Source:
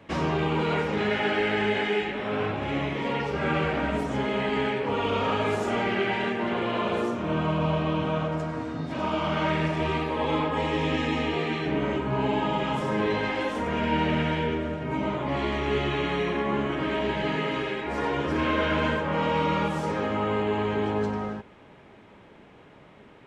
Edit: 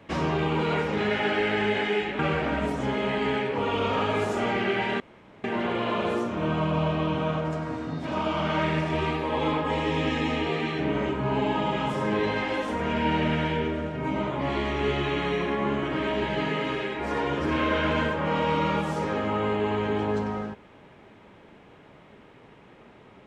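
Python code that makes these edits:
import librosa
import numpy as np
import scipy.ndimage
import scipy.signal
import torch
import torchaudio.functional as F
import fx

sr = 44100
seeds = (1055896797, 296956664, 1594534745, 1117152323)

y = fx.edit(x, sr, fx.cut(start_s=2.19, length_s=1.31),
    fx.insert_room_tone(at_s=6.31, length_s=0.44), tone=tone)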